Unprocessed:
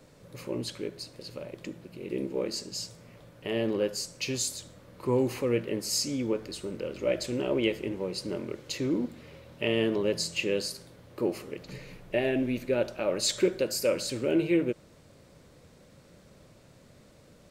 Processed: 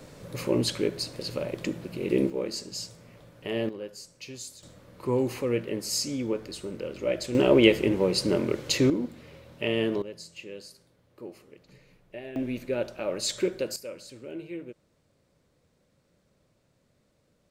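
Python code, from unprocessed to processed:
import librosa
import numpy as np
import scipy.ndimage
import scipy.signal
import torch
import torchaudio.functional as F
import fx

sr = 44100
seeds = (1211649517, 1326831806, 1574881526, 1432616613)

y = fx.gain(x, sr, db=fx.steps((0.0, 8.5), (2.3, 0.0), (3.69, -10.0), (4.63, 0.0), (7.35, 9.0), (8.9, 0.0), (10.02, -13.0), (12.36, -2.0), (13.76, -13.0)))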